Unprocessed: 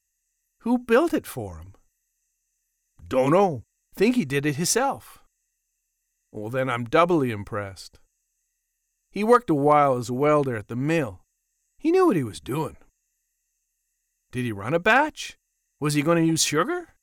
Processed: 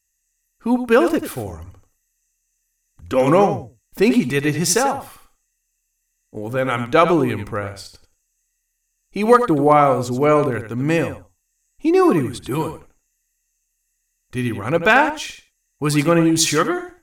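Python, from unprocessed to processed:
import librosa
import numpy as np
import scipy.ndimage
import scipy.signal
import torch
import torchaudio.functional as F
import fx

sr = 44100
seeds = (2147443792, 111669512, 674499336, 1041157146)

y = fx.echo_feedback(x, sr, ms=89, feedback_pct=15, wet_db=-10.0)
y = F.gain(torch.from_numpy(y), 4.5).numpy()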